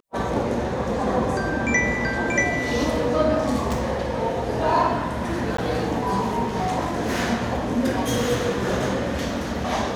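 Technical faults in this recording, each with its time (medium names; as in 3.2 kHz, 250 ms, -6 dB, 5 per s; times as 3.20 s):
5.57–5.58 s: dropout 14 ms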